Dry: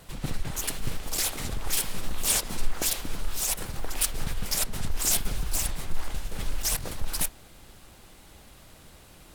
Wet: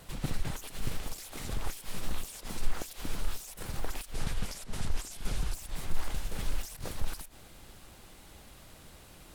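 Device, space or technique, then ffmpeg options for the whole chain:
de-esser from a sidechain: -filter_complex "[0:a]asettb=1/sr,asplit=3[link_01][link_02][link_03];[link_01]atrim=end=4.144[link_04];[link_02]atrim=start=4.14:end=5.54,asetpts=PTS-STARTPTS,afade=type=in:duration=0.004:curve=qsin,afade=type=out:start_time=1.396:duration=0.004:curve=qsin,lowpass=11000[link_05];[link_03]atrim=start=5.536[link_06];[link_04][link_05]acrossfade=duration=0.004:curve1=hsin:curve2=qsin[link_07];[link_07][link_06]acrossfade=duration=0.004:curve1=qsin:curve2=hsin,asplit=2[link_08][link_09];[link_09]highpass=6800,apad=whole_len=412154[link_10];[link_08][link_10]sidechaincompress=threshold=-42dB:ratio=16:attack=2:release=64,volume=-1.5dB"

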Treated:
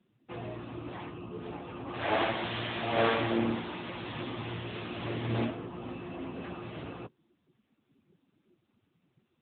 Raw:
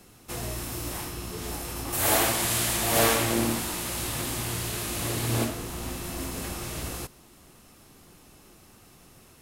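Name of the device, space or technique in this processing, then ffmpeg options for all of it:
mobile call with aggressive noise cancelling: -af "highpass=frequency=110:poles=1,afftdn=noise_reduction=21:noise_floor=-43,volume=-1.5dB" -ar 8000 -c:a libopencore_amrnb -b:a 10200

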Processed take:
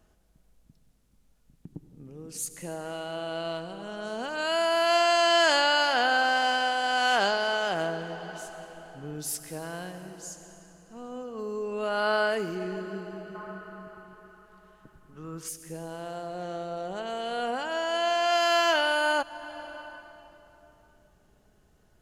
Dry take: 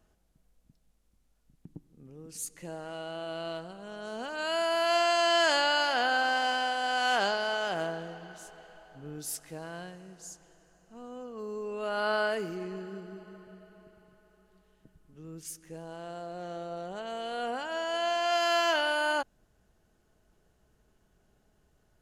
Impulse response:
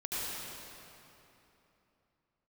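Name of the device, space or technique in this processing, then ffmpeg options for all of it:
ducked reverb: -filter_complex "[0:a]asplit=3[link_01][link_02][link_03];[1:a]atrim=start_sample=2205[link_04];[link_02][link_04]afir=irnorm=-1:irlink=0[link_05];[link_03]apad=whole_len=970786[link_06];[link_05][link_06]sidechaincompress=threshold=-38dB:ratio=8:attack=36:release=507,volume=-12dB[link_07];[link_01][link_07]amix=inputs=2:normalize=0,asettb=1/sr,asplit=3[link_08][link_09][link_10];[link_08]atrim=end=13.354[link_11];[link_09]atrim=start=13.35:end=15.49,asetpts=PTS-STARTPTS,afade=type=in:duration=0.004:curve=qsin,afade=type=out:start_time=2.136:duration=0.004:curve=qsin,equalizer=frequency=1200:width=1.4:gain=13[link_12];[link_10]atrim=start=15.486[link_13];[link_11][link_12]acrossfade=duration=0.004:curve1=hsin:curve2=qsin[link_14];[link_14][link_13]acrossfade=duration=0.004:curve1=qsin:curve2=hsin,volume=3dB"

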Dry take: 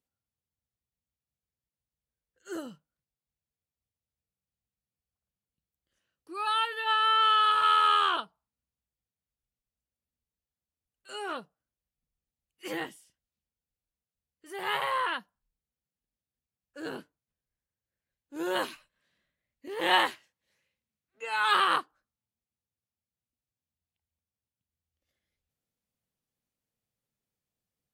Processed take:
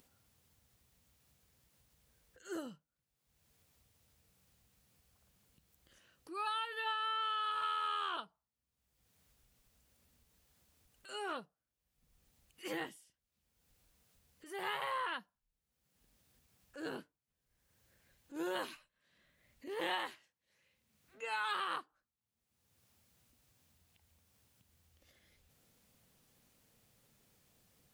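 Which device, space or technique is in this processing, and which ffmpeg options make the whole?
upward and downward compression: -af "acompressor=mode=upward:threshold=-47dB:ratio=2.5,acompressor=threshold=-30dB:ratio=6,volume=-4.5dB"

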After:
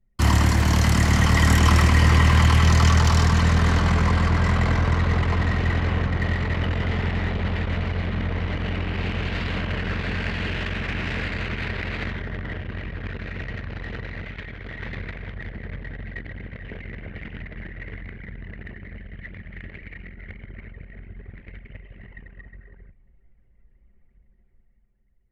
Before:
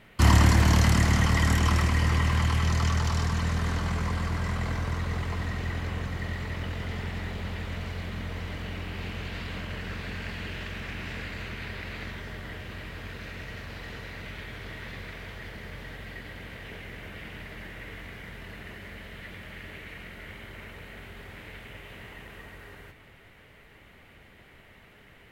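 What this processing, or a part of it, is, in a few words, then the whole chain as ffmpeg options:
voice memo with heavy noise removal: -filter_complex "[0:a]asettb=1/sr,asplit=3[link_01][link_02][link_03];[link_01]atrim=end=14.234[link_04];[link_02]atrim=start=14.23:end=14.79,asetpts=PTS-STARTPTS,afade=type=in:duration=0.004:curve=qsin,afade=type=out:start_time=0.556:duration=0.004:curve=qsin,lowshelf=frequency=230:gain=-3.5[link_05];[link_03]atrim=start=14.786[link_06];[link_04][link_05]acrossfade=duration=0.004:curve1=hsin:curve2=qsin[link_07];[link_07][link_06]acrossfade=duration=0.004:curve1=qsin:curve2=hsin,anlmdn=1,dynaudnorm=framelen=160:gausssize=13:maxgain=9.5dB"

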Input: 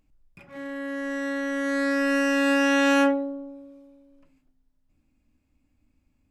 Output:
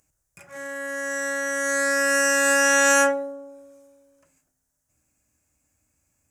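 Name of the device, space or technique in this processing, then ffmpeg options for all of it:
budget condenser microphone: -af "highpass=80,equalizer=frequency=250:width_type=o:width=0.67:gain=-11,equalizer=frequency=630:width_type=o:width=0.67:gain=4,equalizer=frequency=1600:width_type=o:width=0.67:gain=8,equalizer=frequency=6300:width_type=o:width=0.67:gain=10,highshelf=frequency=5900:width_type=q:width=1.5:gain=13"

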